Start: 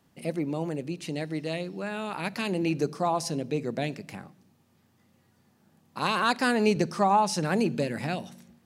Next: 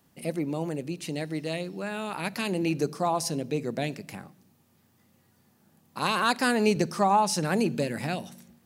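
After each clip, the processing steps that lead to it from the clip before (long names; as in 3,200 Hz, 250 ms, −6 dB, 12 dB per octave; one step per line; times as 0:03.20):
high-shelf EQ 10,000 Hz +11 dB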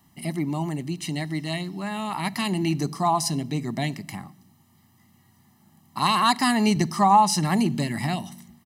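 comb filter 1 ms, depth 98%
level +1.5 dB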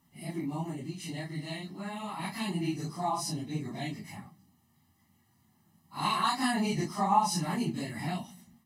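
random phases in long frames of 100 ms
level −8.5 dB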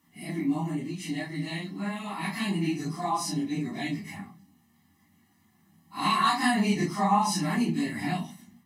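convolution reverb RT60 0.25 s, pre-delay 3 ms, DRR 1.5 dB
level +1.5 dB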